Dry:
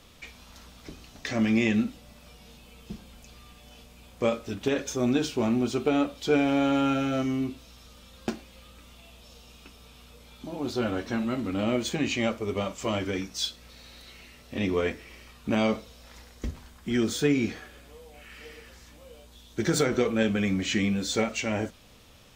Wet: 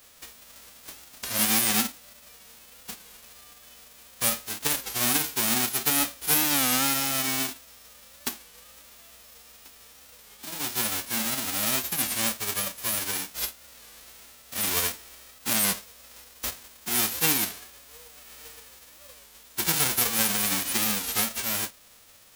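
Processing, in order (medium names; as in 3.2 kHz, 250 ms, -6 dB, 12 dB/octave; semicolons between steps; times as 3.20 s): formants flattened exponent 0.1; warped record 33 1/3 rpm, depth 160 cents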